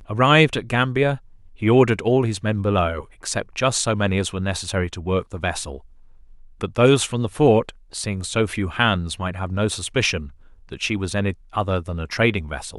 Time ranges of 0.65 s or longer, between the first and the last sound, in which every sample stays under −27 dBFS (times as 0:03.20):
0:05.76–0:06.61